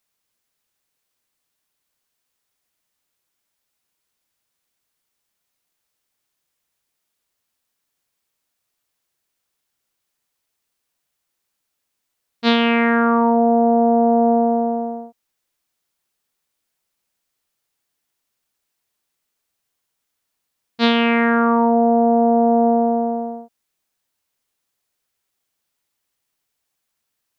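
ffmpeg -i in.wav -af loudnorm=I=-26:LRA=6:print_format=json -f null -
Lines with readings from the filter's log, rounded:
"input_i" : "-16.5",
"input_tp" : "-3.0",
"input_lra" : "10.0",
"input_thresh" : "-27.1",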